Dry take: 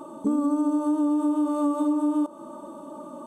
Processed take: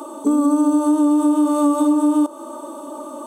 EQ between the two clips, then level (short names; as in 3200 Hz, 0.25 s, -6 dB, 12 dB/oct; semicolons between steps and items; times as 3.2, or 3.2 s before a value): Chebyshev high-pass 270 Hz, order 4; high shelf 3200 Hz +10 dB; +7.5 dB